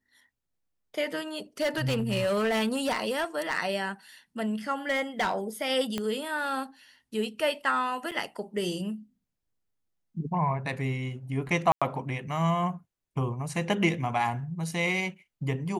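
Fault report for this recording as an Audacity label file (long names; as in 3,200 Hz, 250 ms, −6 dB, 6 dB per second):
1.600000	3.590000	clipping −23 dBFS
4.890000	5.350000	clipping −22 dBFS
5.980000	5.980000	click −16 dBFS
8.110000	8.120000	drop-out 6.8 ms
11.720000	11.820000	drop-out 96 ms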